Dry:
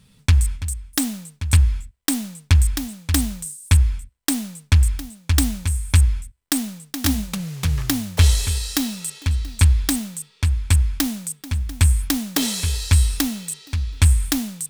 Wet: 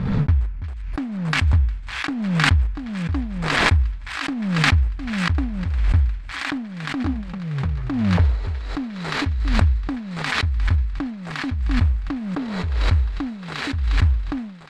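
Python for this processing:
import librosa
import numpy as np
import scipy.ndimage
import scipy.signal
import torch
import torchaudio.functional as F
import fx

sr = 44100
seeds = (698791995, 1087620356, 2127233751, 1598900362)

y = scipy.ndimage.median_filter(x, 15, mode='constant')
y = scipy.signal.sosfilt(scipy.signal.butter(2, 2900.0, 'lowpass', fs=sr, output='sos'), y)
y = fx.echo_wet_highpass(y, sr, ms=355, feedback_pct=82, hz=1900.0, wet_db=-5.0)
y = fx.pre_swell(y, sr, db_per_s=35.0)
y = F.gain(torch.from_numpy(y), -3.5).numpy()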